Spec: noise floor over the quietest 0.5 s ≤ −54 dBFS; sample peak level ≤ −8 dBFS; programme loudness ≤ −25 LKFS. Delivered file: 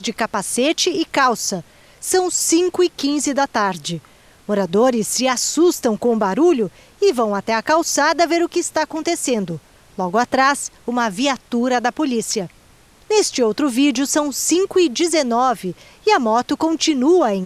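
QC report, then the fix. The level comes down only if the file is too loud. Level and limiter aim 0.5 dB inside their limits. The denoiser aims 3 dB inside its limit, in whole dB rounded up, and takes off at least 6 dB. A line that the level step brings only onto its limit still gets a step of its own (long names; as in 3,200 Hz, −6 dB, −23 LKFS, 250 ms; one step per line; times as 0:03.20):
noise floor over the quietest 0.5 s −50 dBFS: out of spec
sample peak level −2.5 dBFS: out of spec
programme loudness −18.0 LKFS: out of spec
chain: level −7.5 dB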